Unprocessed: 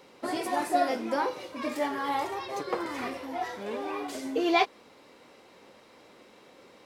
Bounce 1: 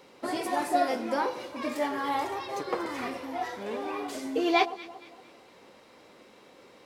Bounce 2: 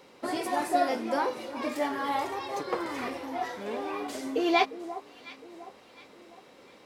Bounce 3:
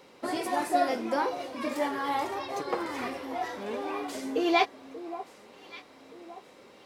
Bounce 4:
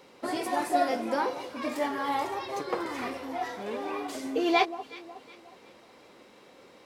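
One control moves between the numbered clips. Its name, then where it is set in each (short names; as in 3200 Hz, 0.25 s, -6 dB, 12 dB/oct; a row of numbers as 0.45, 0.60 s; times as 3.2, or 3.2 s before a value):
echo with dull and thin repeats by turns, time: 0.115, 0.354, 0.586, 0.183 s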